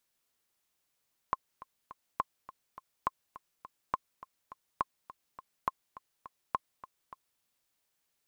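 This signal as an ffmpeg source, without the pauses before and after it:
-f lavfi -i "aevalsrc='pow(10,(-15-17.5*gte(mod(t,3*60/207),60/207))/20)*sin(2*PI*1060*mod(t,60/207))*exp(-6.91*mod(t,60/207)/0.03)':d=6.08:s=44100"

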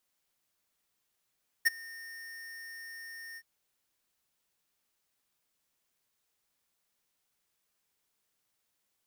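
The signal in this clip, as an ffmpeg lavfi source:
-f lavfi -i "aevalsrc='0.0841*(2*lt(mod(1830*t,1),0.5)-1)':d=1.773:s=44100,afade=t=in:d=0.019,afade=t=out:st=0.019:d=0.02:silence=0.0631,afade=t=out:st=1.72:d=0.053"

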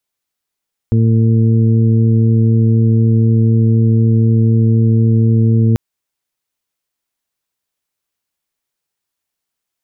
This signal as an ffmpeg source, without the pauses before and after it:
-f lavfi -i "aevalsrc='0.355*sin(2*PI*113*t)+0.188*sin(2*PI*226*t)+0.0631*sin(2*PI*339*t)+0.0562*sin(2*PI*452*t)':d=4.84:s=44100"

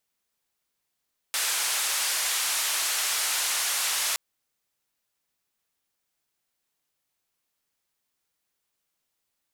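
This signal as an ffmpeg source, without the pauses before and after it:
-f lavfi -i "anoisesrc=c=white:d=2.82:r=44100:seed=1,highpass=f=890,lowpass=f=11000,volume=-18.8dB"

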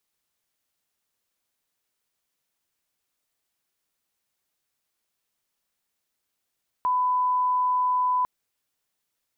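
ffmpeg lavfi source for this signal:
-f lavfi -i "sine=f=1000:d=1.4:r=44100,volume=-1.94dB"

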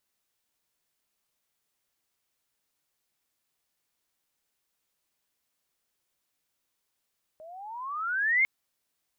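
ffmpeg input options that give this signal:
-f lavfi -i "aevalsrc='pow(10,(-19+25*(t/1.05-1))/20)*sin(2*PI*614*1.05/(22*log(2)/12)*(exp(22*log(2)/12*t/1.05)-1))':d=1.05:s=44100"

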